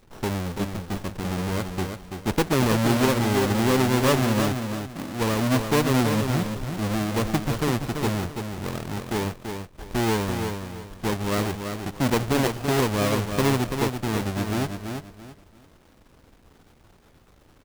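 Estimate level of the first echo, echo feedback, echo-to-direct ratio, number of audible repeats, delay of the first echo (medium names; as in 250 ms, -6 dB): -6.5 dB, 27%, -6.0 dB, 3, 335 ms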